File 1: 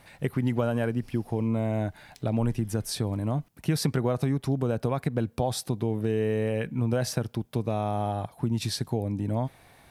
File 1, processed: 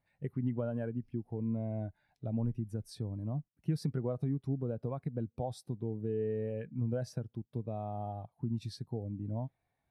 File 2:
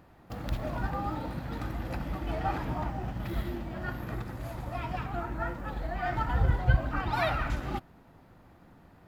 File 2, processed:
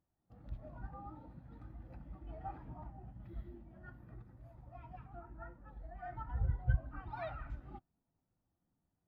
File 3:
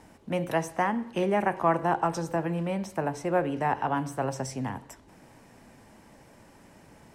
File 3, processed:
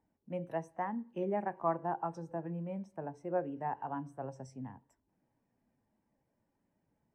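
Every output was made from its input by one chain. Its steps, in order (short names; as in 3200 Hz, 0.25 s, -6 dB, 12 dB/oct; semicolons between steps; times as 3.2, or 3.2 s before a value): spectral expander 1.5:1; gain -8.5 dB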